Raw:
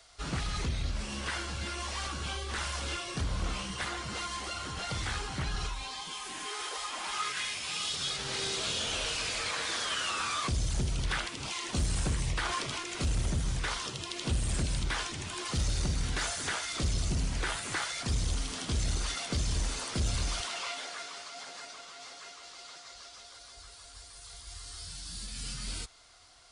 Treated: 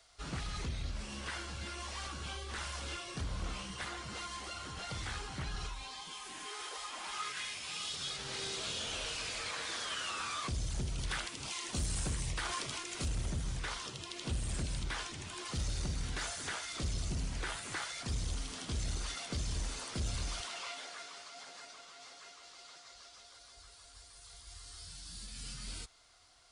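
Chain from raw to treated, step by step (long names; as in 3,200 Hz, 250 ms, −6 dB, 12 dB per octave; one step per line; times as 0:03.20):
0:10.98–0:13.08: high-shelf EQ 6,200 Hz +7.5 dB
level −6 dB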